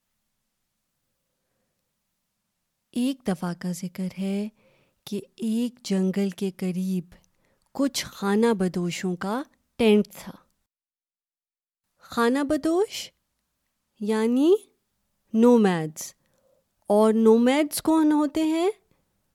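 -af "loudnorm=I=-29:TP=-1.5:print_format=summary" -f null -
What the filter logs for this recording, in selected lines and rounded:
Input Integrated:    -23.4 LUFS
Input True Peak:      -6.3 dBTP
Input LRA:             9.5 LU
Input Threshold:     -34.5 LUFS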